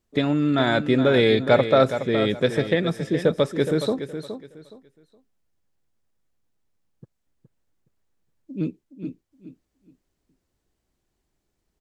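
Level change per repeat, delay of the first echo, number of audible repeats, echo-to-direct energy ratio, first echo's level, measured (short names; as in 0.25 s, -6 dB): -12.5 dB, 0.418 s, 3, -9.5 dB, -10.0 dB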